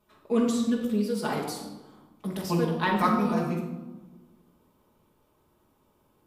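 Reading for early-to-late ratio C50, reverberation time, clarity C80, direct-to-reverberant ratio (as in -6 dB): 3.5 dB, 1.2 s, 6.5 dB, -4.5 dB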